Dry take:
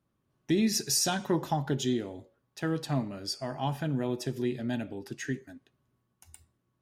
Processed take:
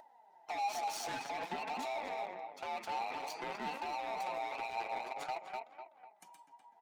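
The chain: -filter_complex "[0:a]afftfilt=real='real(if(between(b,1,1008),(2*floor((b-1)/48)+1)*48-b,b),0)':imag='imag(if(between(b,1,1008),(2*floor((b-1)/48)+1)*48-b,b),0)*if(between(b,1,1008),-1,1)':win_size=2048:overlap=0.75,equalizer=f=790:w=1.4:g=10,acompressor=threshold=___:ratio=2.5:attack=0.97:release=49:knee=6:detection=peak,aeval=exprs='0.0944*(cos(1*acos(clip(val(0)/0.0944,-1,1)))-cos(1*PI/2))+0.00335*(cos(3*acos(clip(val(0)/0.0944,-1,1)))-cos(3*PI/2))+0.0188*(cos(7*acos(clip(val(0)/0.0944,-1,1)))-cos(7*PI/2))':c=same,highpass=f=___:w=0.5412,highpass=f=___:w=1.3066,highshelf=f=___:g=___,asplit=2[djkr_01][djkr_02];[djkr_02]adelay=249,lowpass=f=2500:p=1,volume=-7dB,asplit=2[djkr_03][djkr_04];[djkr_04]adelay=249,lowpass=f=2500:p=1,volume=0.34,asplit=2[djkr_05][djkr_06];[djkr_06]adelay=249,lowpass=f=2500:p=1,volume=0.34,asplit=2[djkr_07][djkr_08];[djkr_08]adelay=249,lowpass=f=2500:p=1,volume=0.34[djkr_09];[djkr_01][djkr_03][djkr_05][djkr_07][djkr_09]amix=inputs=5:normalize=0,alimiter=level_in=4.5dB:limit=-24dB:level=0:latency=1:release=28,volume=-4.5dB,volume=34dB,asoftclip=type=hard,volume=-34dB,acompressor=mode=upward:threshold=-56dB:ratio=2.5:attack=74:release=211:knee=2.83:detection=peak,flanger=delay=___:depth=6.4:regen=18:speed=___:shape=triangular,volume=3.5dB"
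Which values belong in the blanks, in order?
-31dB, 180, 180, 8300, -11, 2.9, 0.51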